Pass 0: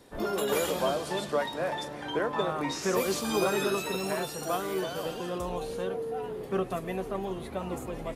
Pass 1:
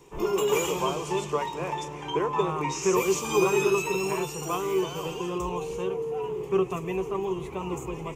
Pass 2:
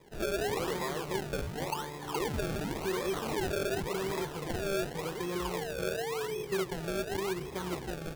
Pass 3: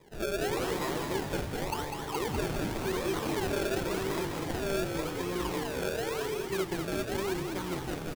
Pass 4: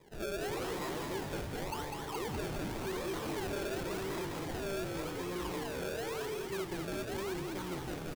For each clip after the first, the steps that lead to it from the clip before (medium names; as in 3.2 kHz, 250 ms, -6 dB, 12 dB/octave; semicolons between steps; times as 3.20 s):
rippled EQ curve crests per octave 0.73, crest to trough 14 dB
peak limiter -20.5 dBFS, peak gain reduction 9.5 dB; decimation with a swept rate 30×, swing 100% 0.9 Hz; trim -4 dB
frequency-shifting echo 200 ms, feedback 56%, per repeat -49 Hz, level -5 dB
saturation -30 dBFS, distortion -13 dB; trim -2.5 dB